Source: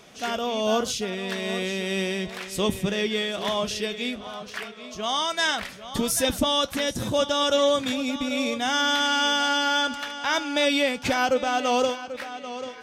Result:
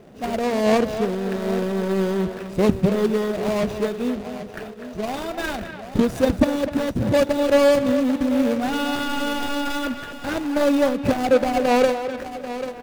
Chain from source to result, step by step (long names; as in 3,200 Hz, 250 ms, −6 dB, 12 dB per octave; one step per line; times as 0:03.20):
running median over 41 samples
far-end echo of a speakerphone 250 ms, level −9 dB
level +8.5 dB